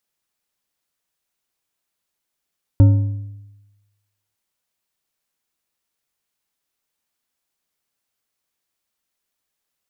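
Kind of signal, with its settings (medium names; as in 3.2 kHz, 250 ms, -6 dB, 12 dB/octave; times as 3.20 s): metal hit bar, lowest mode 102 Hz, decay 1.11 s, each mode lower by 10.5 dB, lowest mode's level -5 dB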